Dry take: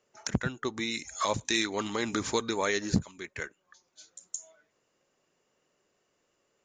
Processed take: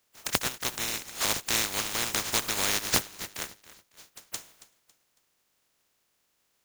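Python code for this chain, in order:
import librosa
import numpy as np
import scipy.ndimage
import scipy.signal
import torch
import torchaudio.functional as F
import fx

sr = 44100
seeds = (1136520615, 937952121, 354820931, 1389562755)

p1 = fx.spec_flatten(x, sr, power=0.14)
p2 = p1 + fx.echo_feedback(p1, sr, ms=276, feedback_pct=35, wet_db=-17.5, dry=0)
y = p2 * 10.0 ** (1.5 / 20.0)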